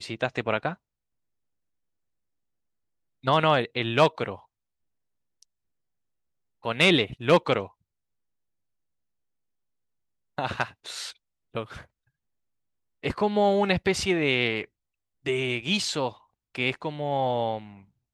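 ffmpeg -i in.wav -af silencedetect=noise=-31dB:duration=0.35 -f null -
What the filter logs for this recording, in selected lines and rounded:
silence_start: 0.73
silence_end: 3.25 | silence_duration: 2.52
silence_start: 4.35
silence_end: 6.65 | silence_duration: 2.30
silence_start: 7.66
silence_end: 10.38 | silence_duration: 2.72
silence_start: 11.10
silence_end: 11.55 | silence_duration: 0.45
silence_start: 11.77
silence_end: 13.04 | silence_duration: 1.27
silence_start: 14.64
silence_end: 15.26 | silence_duration: 0.62
silence_start: 16.10
silence_end: 16.55 | silence_duration: 0.46
silence_start: 17.59
silence_end: 18.14 | silence_duration: 0.55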